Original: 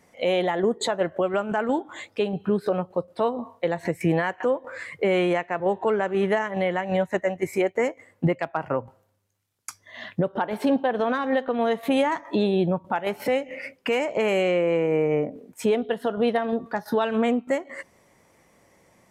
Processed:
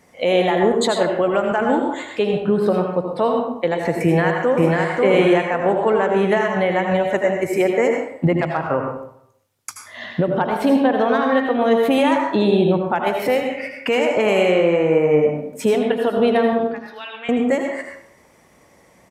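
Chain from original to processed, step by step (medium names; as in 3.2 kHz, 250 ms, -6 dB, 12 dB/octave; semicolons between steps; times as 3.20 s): 16.71–17.29 s: band-pass filter 2.6 kHz, Q 2.6; reverberation RT60 0.70 s, pre-delay 74 ms, DRR 2 dB; 4.03–4.72 s: echo throw 540 ms, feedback 30%, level -1.5 dB; trim +4.5 dB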